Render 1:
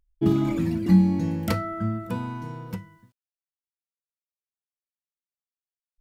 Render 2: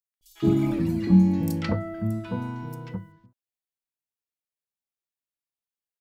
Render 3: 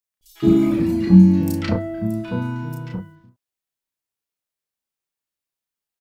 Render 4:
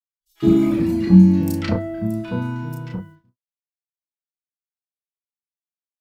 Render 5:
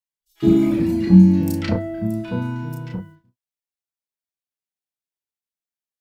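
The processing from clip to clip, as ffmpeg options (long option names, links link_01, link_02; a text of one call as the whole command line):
ffmpeg -i in.wav -filter_complex "[0:a]acrossover=split=1300|5500[link_01][link_02][link_03];[link_02]adelay=140[link_04];[link_01]adelay=210[link_05];[link_05][link_04][link_03]amix=inputs=3:normalize=0" out.wav
ffmpeg -i in.wav -filter_complex "[0:a]asplit=2[link_01][link_02];[link_02]adelay=33,volume=-3dB[link_03];[link_01][link_03]amix=inputs=2:normalize=0,volume=3.5dB" out.wav
ffmpeg -i in.wav -af "agate=range=-33dB:threshold=-40dB:ratio=3:detection=peak" out.wav
ffmpeg -i in.wav -af "equalizer=frequency=1200:width=4.4:gain=-4.5" out.wav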